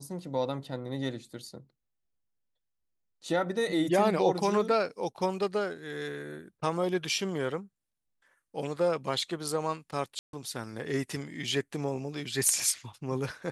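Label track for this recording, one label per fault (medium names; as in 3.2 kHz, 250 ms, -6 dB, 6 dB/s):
10.190000	10.330000	dropout 142 ms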